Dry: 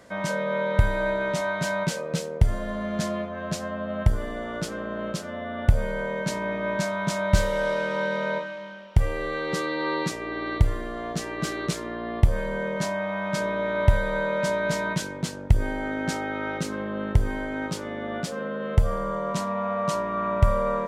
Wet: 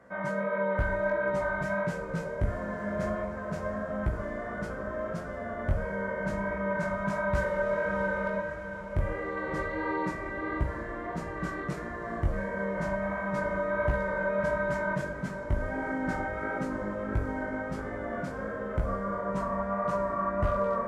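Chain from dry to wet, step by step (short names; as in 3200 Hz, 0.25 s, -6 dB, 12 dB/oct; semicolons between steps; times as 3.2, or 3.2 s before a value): HPF 43 Hz 6 dB/oct; resonant high shelf 2400 Hz -12.5 dB, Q 1.5; overloaded stage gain 15 dB; chorus 1.5 Hz, delay 15 ms, depth 6 ms; diffused feedback echo 0.665 s, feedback 74%, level -12 dB; plate-style reverb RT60 0.53 s, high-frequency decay 0.9×, DRR 7.5 dB; gain -2.5 dB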